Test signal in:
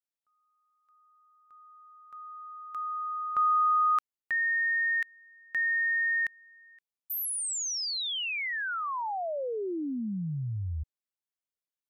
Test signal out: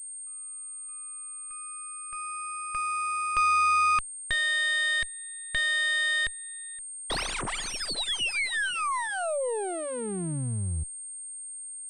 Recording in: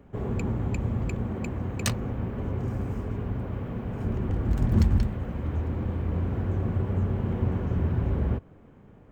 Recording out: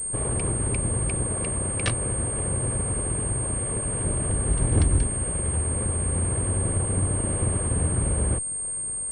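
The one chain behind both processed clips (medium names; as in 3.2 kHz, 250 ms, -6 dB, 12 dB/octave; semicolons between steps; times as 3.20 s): comb filter that takes the minimum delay 1.8 ms; in parallel at +2 dB: compression, threshold -39 dBFS; on the sum: treble shelf 2.7 kHz +6.5 dB; class-D stage that switches slowly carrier 8.6 kHz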